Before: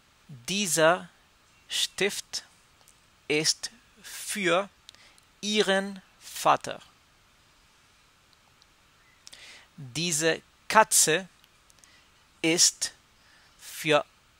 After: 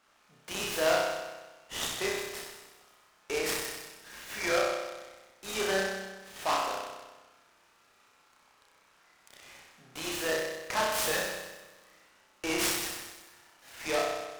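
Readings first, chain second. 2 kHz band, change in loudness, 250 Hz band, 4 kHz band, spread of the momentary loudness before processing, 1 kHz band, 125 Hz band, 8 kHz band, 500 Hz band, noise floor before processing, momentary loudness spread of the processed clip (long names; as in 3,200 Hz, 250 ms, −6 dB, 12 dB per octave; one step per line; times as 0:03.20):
−4.0 dB, −6.5 dB, −7.0 dB, −6.5 dB, 18 LU, −5.5 dB, −10.5 dB, −9.5 dB, −3.5 dB, −62 dBFS, 19 LU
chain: low-pass filter 2,300 Hz 6 dB per octave
gain into a clipping stage and back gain 21 dB
high-pass filter 430 Hz 12 dB per octave
on a send: flutter between parallel walls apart 5.4 metres, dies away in 1.2 s
on the sum: short delay modulated by noise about 3,000 Hz, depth 0.044 ms
level −4 dB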